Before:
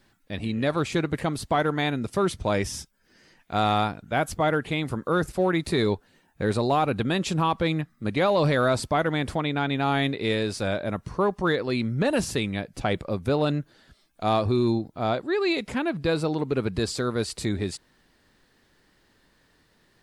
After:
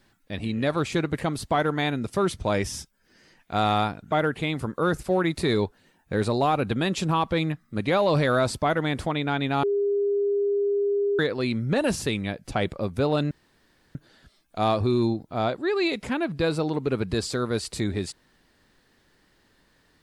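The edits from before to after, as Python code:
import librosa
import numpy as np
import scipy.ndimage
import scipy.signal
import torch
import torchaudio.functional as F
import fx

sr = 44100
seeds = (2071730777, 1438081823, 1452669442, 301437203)

y = fx.edit(x, sr, fx.cut(start_s=4.12, length_s=0.29),
    fx.bleep(start_s=9.92, length_s=1.56, hz=404.0, db=-20.5),
    fx.insert_room_tone(at_s=13.6, length_s=0.64), tone=tone)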